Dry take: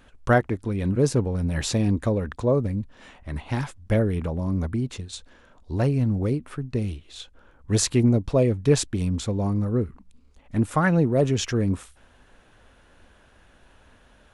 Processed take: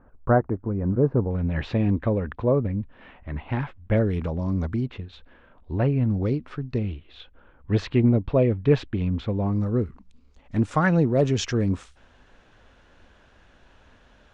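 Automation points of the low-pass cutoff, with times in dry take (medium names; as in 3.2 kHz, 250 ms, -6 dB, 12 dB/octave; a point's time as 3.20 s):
low-pass 24 dB/octave
1.3 kHz
from 1.31 s 2.9 kHz
from 3.97 s 6 kHz
from 4.86 s 3 kHz
from 6.11 s 5.2 kHz
from 6.78 s 3.2 kHz
from 9.53 s 6.8 kHz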